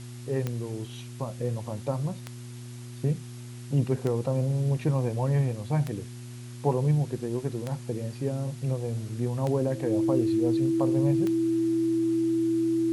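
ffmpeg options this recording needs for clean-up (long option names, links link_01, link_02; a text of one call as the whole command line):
ffmpeg -i in.wav -af "adeclick=threshold=4,bandreject=frequency=121.1:width_type=h:width=4,bandreject=frequency=242.2:width_type=h:width=4,bandreject=frequency=363.3:width_type=h:width=4,bandreject=frequency=330:width=30,afftdn=noise_reduction=30:noise_floor=-41" out.wav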